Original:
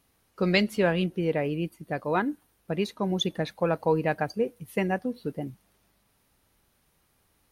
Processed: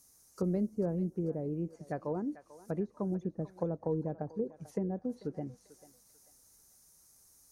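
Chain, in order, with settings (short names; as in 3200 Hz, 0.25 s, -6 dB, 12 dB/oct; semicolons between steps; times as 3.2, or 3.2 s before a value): resonant high shelf 4400 Hz +13.5 dB, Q 3; treble ducked by the level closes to 420 Hz, closed at -23.5 dBFS; thinning echo 0.442 s, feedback 55%, high-pass 1100 Hz, level -11 dB; gain -5.5 dB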